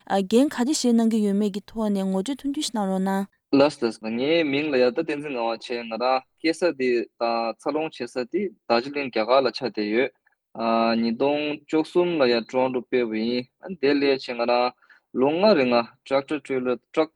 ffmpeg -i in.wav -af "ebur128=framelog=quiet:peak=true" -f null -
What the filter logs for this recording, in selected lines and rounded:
Integrated loudness:
  I:         -23.6 LUFS
  Threshold: -33.7 LUFS
Loudness range:
  LRA:         2.4 LU
  Threshold: -43.9 LUFS
  LRA low:   -25.3 LUFS
  LRA high:  -22.9 LUFS
True peak:
  Peak:       -5.6 dBFS